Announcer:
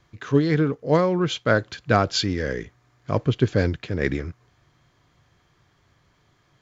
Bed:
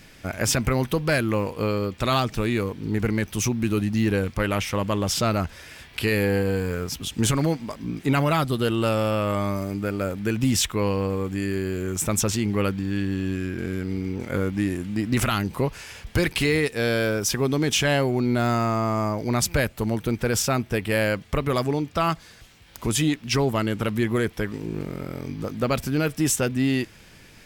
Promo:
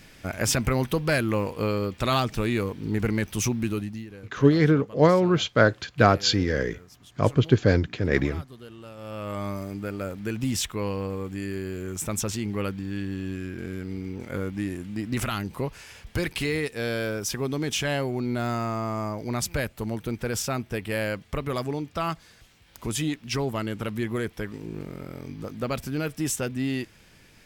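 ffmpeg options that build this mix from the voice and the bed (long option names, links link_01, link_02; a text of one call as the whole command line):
ffmpeg -i stem1.wav -i stem2.wav -filter_complex "[0:a]adelay=4100,volume=1dB[link_01];[1:a]volume=14dB,afade=type=out:start_time=3.55:duration=0.52:silence=0.105925,afade=type=in:start_time=8.96:duration=0.51:silence=0.16788[link_02];[link_01][link_02]amix=inputs=2:normalize=0" out.wav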